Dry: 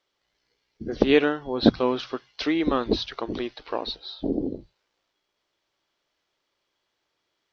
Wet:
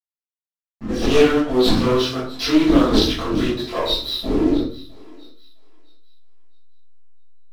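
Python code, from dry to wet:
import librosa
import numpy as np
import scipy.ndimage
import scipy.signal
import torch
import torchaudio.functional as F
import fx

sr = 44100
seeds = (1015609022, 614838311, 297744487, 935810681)

p1 = fx.bass_treble(x, sr, bass_db=1, treble_db=12)
p2 = fx.notch(p1, sr, hz=4400.0, q=13.0)
p3 = fx.leveller(p2, sr, passes=5)
p4 = 10.0 ** (-17.5 / 20.0) * (np.abs((p3 / 10.0 ** (-17.5 / 20.0) + 3.0) % 4.0 - 2.0) - 1.0)
p5 = p3 + F.gain(torch.from_numpy(p4), -8.5).numpy()
p6 = fx.chorus_voices(p5, sr, voices=2, hz=0.85, base_ms=24, depth_ms=2.2, mix_pct=60)
p7 = fx.backlash(p6, sr, play_db=-37.5)
p8 = p7 + fx.echo_thinned(p7, sr, ms=659, feedback_pct=29, hz=720.0, wet_db=-18.5, dry=0)
p9 = fx.room_shoebox(p8, sr, seeds[0], volume_m3=390.0, walls='furnished', distance_m=6.5)
p10 = fx.doppler_dist(p9, sr, depth_ms=0.2)
y = F.gain(torch.from_numpy(p10), -16.0).numpy()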